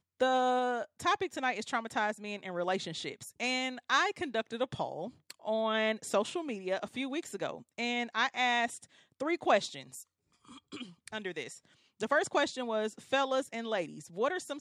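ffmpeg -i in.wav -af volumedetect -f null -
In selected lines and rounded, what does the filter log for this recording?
mean_volume: -33.9 dB
max_volume: -13.2 dB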